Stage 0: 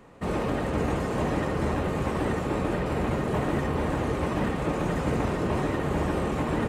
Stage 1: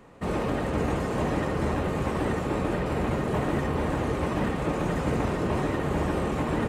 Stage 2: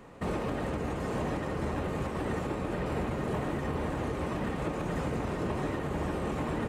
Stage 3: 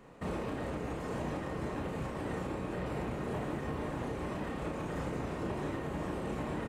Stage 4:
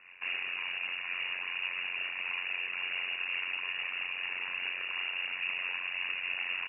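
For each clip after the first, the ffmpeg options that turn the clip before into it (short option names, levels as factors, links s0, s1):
-af anull
-af "alimiter=limit=0.0631:level=0:latency=1:release=433,volume=1.12"
-filter_complex "[0:a]asplit=2[s0][s1];[s1]adelay=33,volume=0.562[s2];[s0][s2]amix=inputs=2:normalize=0,volume=0.531"
-af "tremolo=f=90:d=1,lowpass=f=2500:t=q:w=0.5098,lowpass=f=2500:t=q:w=0.6013,lowpass=f=2500:t=q:w=0.9,lowpass=f=2500:t=q:w=2.563,afreqshift=-2900,volume=1.78"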